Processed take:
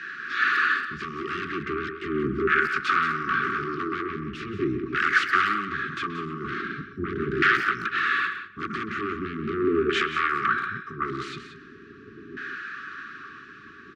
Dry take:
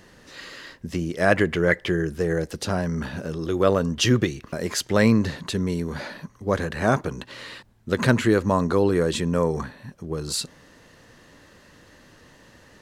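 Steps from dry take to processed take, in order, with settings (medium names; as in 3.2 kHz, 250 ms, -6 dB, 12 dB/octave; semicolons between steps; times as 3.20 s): dynamic bell 5 kHz, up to -5 dB, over -45 dBFS, Q 0.91; compression 16:1, threshold -26 dBFS, peak gain reduction 14.5 dB; sine folder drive 19 dB, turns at -13.5 dBFS; LFO band-pass saw down 0.44 Hz 480–1800 Hz; brick-wall FIR band-stop 460–1200 Hz; distance through air 86 m; delay 166 ms -9.5 dB; speed mistake 48 kHz file played as 44.1 kHz; speakerphone echo 130 ms, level -10 dB; three bands expanded up and down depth 40%; trim +4 dB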